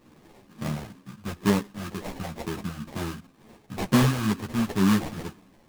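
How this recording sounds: phasing stages 6, 2.1 Hz, lowest notch 370–2100 Hz; aliases and images of a low sample rate 1400 Hz, jitter 20%; a shimmering, thickened sound

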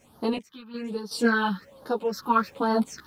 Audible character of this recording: phasing stages 6, 1.2 Hz, lowest notch 530–2300 Hz; a quantiser's noise floor 12-bit, dither none; random-step tremolo 2.7 Hz, depth 90%; a shimmering, thickened sound

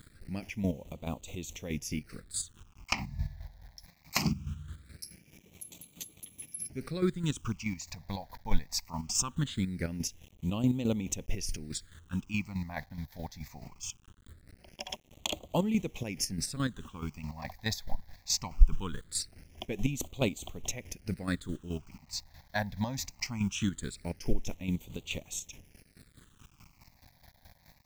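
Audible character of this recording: a quantiser's noise floor 10-bit, dither none; chopped level 4.7 Hz, depth 60%, duty 35%; phasing stages 8, 0.21 Hz, lowest notch 370–1600 Hz

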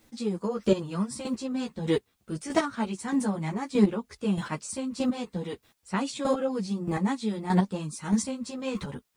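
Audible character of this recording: a quantiser's noise floor 12-bit, dither triangular; chopped level 1.6 Hz, depth 65%, duty 15%; a shimmering, thickened sound

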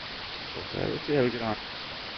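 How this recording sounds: tremolo triangle 2.7 Hz, depth 85%; a quantiser's noise floor 6-bit, dither triangular; Nellymoser

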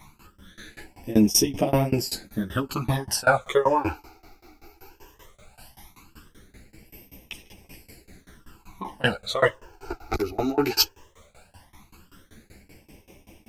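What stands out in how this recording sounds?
a quantiser's noise floor 12-bit, dither none; phasing stages 12, 0.17 Hz, lowest notch 170–1400 Hz; tremolo saw down 5.2 Hz, depth 100%; a shimmering, thickened sound

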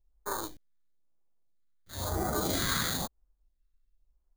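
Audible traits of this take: aliases and images of a low sample rate 2700 Hz, jitter 0%; phasing stages 2, 1 Hz, lowest notch 660–2800 Hz

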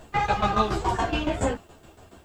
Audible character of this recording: tremolo saw down 7.1 Hz, depth 80%; a quantiser's noise floor 12-bit, dither triangular; a shimmering, thickened sound

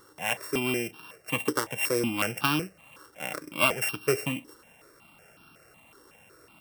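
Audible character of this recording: a buzz of ramps at a fixed pitch in blocks of 16 samples; notches that jump at a steady rate 5.4 Hz 680–2000 Hz

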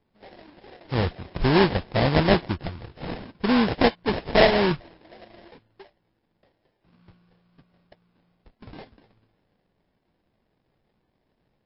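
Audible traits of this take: aliases and images of a low sample rate 1300 Hz, jitter 20%; MP3

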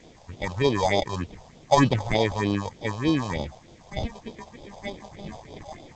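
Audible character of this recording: aliases and images of a low sample rate 1400 Hz, jitter 0%; phasing stages 4, 3.3 Hz, lowest notch 290–1800 Hz; a quantiser's noise floor 10-bit, dither triangular; G.722

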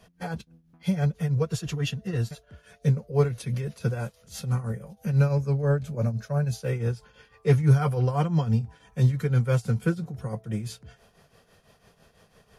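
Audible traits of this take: tremolo triangle 6 Hz, depth 75%

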